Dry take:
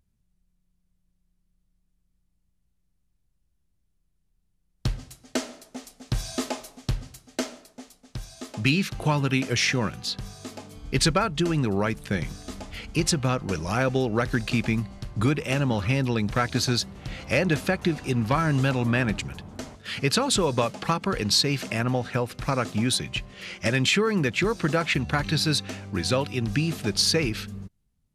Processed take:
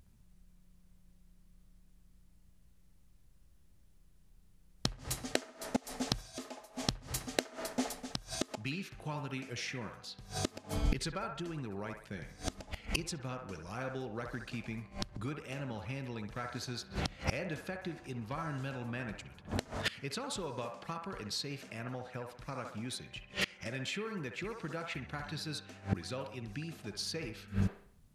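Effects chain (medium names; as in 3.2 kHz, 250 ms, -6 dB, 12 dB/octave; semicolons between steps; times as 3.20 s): feedback echo behind a band-pass 65 ms, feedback 44%, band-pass 1 kHz, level -3 dB; inverted gate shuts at -27 dBFS, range -26 dB; trim +9 dB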